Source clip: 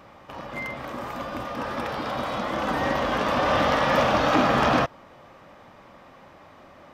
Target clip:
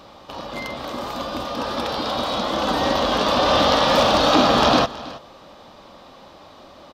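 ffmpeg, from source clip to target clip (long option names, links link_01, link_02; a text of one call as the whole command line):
ffmpeg -i in.wav -filter_complex "[0:a]equalizer=frequency=125:width_type=o:width=1:gain=-6,equalizer=frequency=2000:width_type=o:width=1:gain=-9,equalizer=frequency=4000:width_type=o:width=1:gain=11,asettb=1/sr,asplit=3[link_01][link_02][link_03];[link_01]atrim=end=3.874[link_04];[link_02]atrim=start=3.87:end=4.28,asetpts=PTS-STARTPTS,afade=type=in:duration=0.004:curve=qsin,afade=type=out:start_time=0.406:duration=0.004:curve=qsin,asoftclip=type=hard:threshold=-15.5dB[link_05];[link_03]atrim=start=4.276[link_06];[link_04][link_05]acrossfade=duration=0.004:curve1=hsin:curve2=qsin[link_07];[link_07][link_06]acrossfade=duration=0.004:curve1=qsin:curve2=hsin,asplit=2[link_08][link_09];[link_09]aecho=0:1:323:0.126[link_10];[link_08][link_10]amix=inputs=2:normalize=0,volume=5.5dB" out.wav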